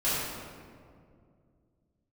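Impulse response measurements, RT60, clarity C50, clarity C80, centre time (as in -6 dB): 2.2 s, -3.0 dB, -0.5 dB, 0.126 s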